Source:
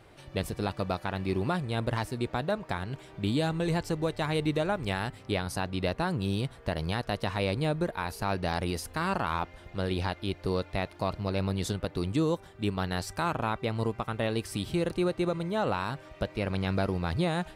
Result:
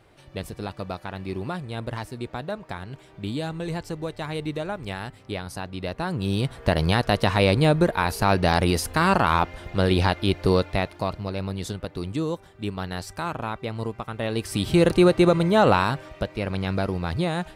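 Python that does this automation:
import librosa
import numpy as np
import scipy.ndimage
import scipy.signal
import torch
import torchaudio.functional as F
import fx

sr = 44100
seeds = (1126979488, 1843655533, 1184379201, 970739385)

y = fx.gain(x, sr, db=fx.line((5.84, -1.5), (6.68, 10.0), (10.52, 10.0), (11.35, 0.0), (14.13, 0.0), (14.83, 11.5), (15.76, 11.5), (16.29, 3.0)))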